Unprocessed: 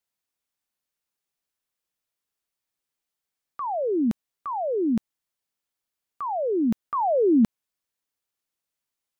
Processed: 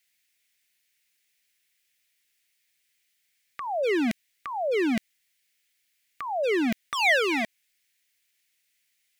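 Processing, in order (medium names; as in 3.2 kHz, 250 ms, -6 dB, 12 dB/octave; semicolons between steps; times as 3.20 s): in parallel at 0 dB: peak limiter -22 dBFS, peak gain reduction 9.5 dB; on the sum: wavefolder -16.5 dBFS; resonant high shelf 1.5 kHz +10.5 dB, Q 3; trim -4 dB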